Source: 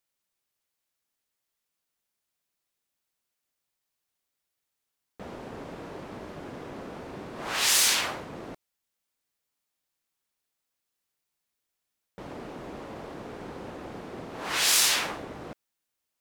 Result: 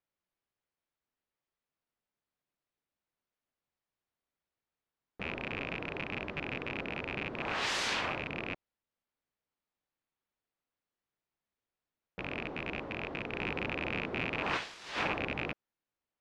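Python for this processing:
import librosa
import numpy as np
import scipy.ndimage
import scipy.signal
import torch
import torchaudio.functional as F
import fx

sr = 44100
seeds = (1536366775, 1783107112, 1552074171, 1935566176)

y = fx.rattle_buzz(x, sr, strikes_db=-44.0, level_db=-17.0)
y = fx.over_compress(y, sr, threshold_db=-28.0, ratio=-0.5, at=(13.33, 15.5))
y = fx.spacing_loss(y, sr, db_at_10k=28)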